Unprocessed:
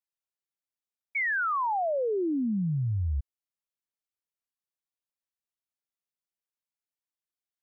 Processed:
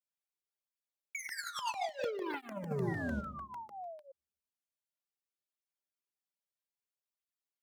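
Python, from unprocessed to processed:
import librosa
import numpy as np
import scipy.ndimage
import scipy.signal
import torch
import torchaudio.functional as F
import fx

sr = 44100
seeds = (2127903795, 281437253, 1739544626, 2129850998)

p1 = fx.high_shelf(x, sr, hz=2100.0, db=-3.0)
p2 = fx.leveller(p1, sr, passes=3)
p3 = fx.highpass(p2, sr, hz=380.0, slope=6)
p4 = fx.peak_eq(p3, sr, hz=1300.0, db=-4.0, octaves=1.5)
p5 = p4 + 0.64 * np.pad(p4, (int(5.0 * sr / 1000.0), 0))[:len(p4)]
p6 = p5 + fx.echo_feedback(p5, sr, ms=76, feedback_pct=56, wet_db=-21, dry=0)
p7 = fx.room_shoebox(p6, sr, seeds[0], volume_m3=150.0, walls='mixed', distance_m=0.35)
p8 = fx.over_compress(p7, sr, threshold_db=-34.0, ratio=-1.0)
p9 = fx.spec_paint(p8, sr, seeds[1], shape='fall', start_s=2.87, length_s=1.25, low_hz=530.0, high_hz=2000.0, level_db=-43.0)
p10 = fx.buffer_crackle(p9, sr, first_s=0.54, period_s=0.15, block=64, kind='repeat')
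y = fx.flanger_cancel(p10, sr, hz=0.62, depth_ms=2.8)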